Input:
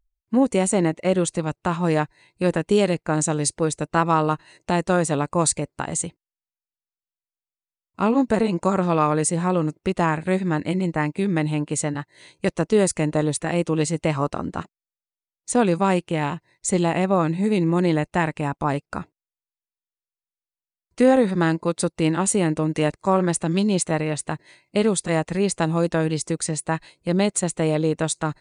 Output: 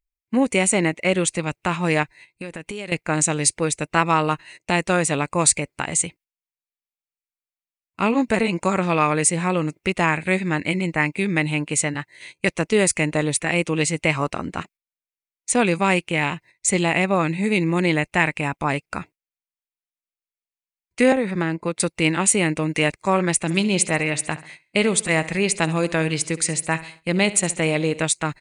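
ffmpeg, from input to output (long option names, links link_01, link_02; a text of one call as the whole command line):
ffmpeg -i in.wav -filter_complex "[0:a]asettb=1/sr,asplit=3[link_01][link_02][link_03];[link_01]atrim=end=2.034[link_04];[link_02]atrim=start=2.03:end=2.92,asetpts=PTS-STARTPTS,afade=type=in:duration=0.004:curve=qsin,afade=type=out:start_time=0.886:duration=0.004:curve=qsin,acompressor=threshold=-29dB:ratio=6:attack=3.2:release=140:knee=1:detection=peak[link_05];[link_03]atrim=start=2.916[link_06];[link_04][link_05]acrossfade=duration=0.004:curve1=hsin:curve2=qsin[link_07];[link_07][link_06]acrossfade=duration=0.004:curve1=qsin:curve2=hsin,asettb=1/sr,asplit=3[link_08][link_09][link_10];[link_08]atrim=end=21.124[link_11];[link_09]atrim=start=21.12:end=21.8,asetpts=PTS-STARTPTS,afade=type=in:duration=0.004:curve=qsin,afade=type=out:start_time=0.676:duration=0.004:curve=qsin,acrossover=split=620|2300[link_12][link_13][link_14];[link_12]acompressor=threshold=-19dB:ratio=4[link_15];[link_13]acompressor=threshold=-29dB:ratio=4[link_16];[link_14]acompressor=threshold=-51dB:ratio=4[link_17];[link_15][link_16][link_17]amix=inputs=3:normalize=0[link_18];[link_10]atrim=start=21.796[link_19];[link_11][link_18]acrossfade=duration=0.004:curve1=hsin:curve2=qsin[link_20];[link_20][link_19]acrossfade=duration=0.004:curve1=qsin:curve2=hsin,asplit=3[link_21][link_22][link_23];[link_21]afade=type=out:start_time=23.43:duration=0.02[link_24];[link_22]aecho=1:1:68|136|204|272:0.15|0.0703|0.0331|0.0155,afade=type=in:start_time=23.43:duration=0.02,afade=type=out:start_time=28.04:duration=0.02[link_25];[link_23]afade=type=in:start_time=28.04:duration=0.02[link_26];[link_24][link_25][link_26]amix=inputs=3:normalize=0,highshelf=frequency=5300:gain=8,agate=range=-11dB:threshold=-46dB:ratio=16:detection=peak,equalizer=frequency=2300:width=1.9:gain=13,volume=-1dB" out.wav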